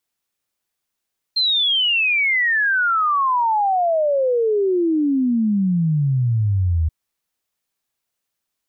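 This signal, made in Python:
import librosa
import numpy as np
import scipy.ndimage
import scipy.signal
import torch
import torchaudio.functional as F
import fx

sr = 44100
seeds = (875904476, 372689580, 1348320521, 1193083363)

y = fx.ess(sr, length_s=5.53, from_hz=4200.0, to_hz=77.0, level_db=-15.0)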